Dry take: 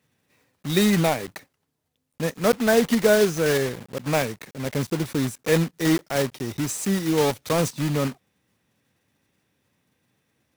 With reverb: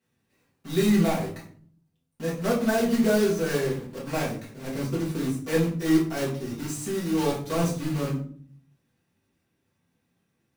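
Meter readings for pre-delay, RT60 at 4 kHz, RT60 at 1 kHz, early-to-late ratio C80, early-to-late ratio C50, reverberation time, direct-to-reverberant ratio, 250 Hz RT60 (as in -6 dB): 4 ms, 0.35 s, 0.40 s, 11.5 dB, 6.5 dB, 0.50 s, -7.0 dB, 0.85 s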